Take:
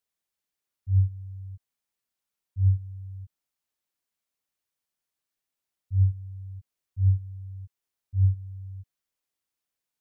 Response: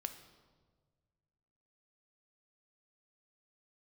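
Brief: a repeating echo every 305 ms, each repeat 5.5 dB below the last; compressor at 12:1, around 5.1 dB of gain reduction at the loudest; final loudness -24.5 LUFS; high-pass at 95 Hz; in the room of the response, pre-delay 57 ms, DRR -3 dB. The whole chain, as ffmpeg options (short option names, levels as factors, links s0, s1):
-filter_complex "[0:a]highpass=95,acompressor=threshold=0.0631:ratio=12,aecho=1:1:305|610|915|1220|1525|1830|2135:0.531|0.281|0.149|0.079|0.0419|0.0222|0.0118,asplit=2[s0][s1];[1:a]atrim=start_sample=2205,adelay=57[s2];[s1][s2]afir=irnorm=-1:irlink=0,volume=1.78[s3];[s0][s3]amix=inputs=2:normalize=0,volume=3.55"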